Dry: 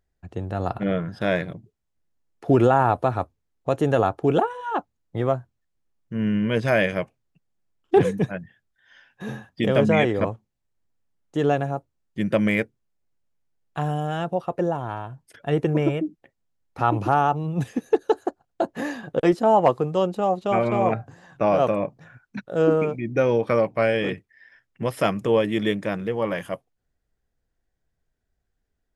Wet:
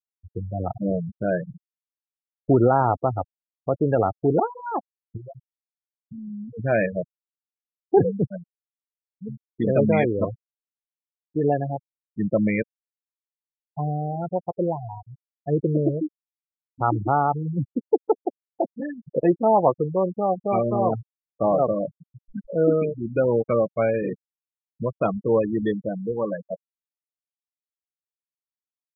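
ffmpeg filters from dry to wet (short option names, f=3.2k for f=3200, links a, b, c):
-filter_complex "[0:a]asplit=3[a][b][c];[a]afade=t=out:st=5.16:d=0.02[d];[b]acompressor=threshold=-31dB:ratio=5:attack=3.2:release=140:knee=1:detection=peak,afade=t=in:st=5.16:d=0.02,afade=t=out:st=6.58:d=0.02[e];[c]afade=t=in:st=6.58:d=0.02[f];[d][e][f]amix=inputs=3:normalize=0,asettb=1/sr,asplit=3[g][h][i];[g]atrim=end=21.854[j];[h]atrim=start=21.85:end=22.6,asetpts=PTS-STARTPTS,afade=t=in:d=0.004:c=qsin,afade=t=out:st=0.746:d=0.004:c=qsin,aeval=exprs='val(0)+0.5*0.0178*sgn(val(0))':c=same[k];[i]atrim=start=22.596[l];[j][k]acrossfade=d=0.004:c1=hsin:c2=qsin[m];[m][l]acrossfade=d=0.004:c1=qsin:c2=hsin,afftfilt=real='re*gte(hypot(re,im),0.141)':imag='im*gte(hypot(re,im),0.141)':win_size=1024:overlap=0.75,highshelf=f=2.9k:g=-10.5"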